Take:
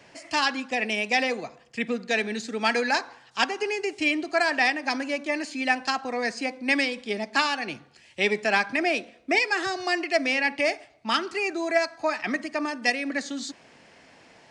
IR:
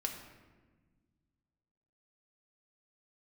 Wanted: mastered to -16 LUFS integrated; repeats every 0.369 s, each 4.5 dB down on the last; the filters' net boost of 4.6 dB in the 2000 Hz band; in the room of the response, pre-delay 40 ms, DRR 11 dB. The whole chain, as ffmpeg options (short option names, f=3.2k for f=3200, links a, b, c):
-filter_complex "[0:a]equalizer=f=2k:t=o:g=5.5,aecho=1:1:369|738|1107|1476|1845|2214|2583|2952|3321:0.596|0.357|0.214|0.129|0.0772|0.0463|0.0278|0.0167|0.01,asplit=2[a][b];[1:a]atrim=start_sample=2205,adelay=40[c];[b][c]afir=irnorm=-1:irlink=0,volume=-12dB[d];[a][d]amix=inputs=2:normalize=0,volume=4.5dB"